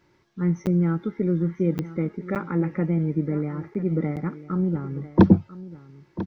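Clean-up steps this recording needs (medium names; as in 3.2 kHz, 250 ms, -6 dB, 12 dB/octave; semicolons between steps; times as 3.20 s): de-click; interpolate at 0.66/1.78/2.35/3.74/4.16 s, 8.3 ms; inverse comb 994 ms -15.5 dB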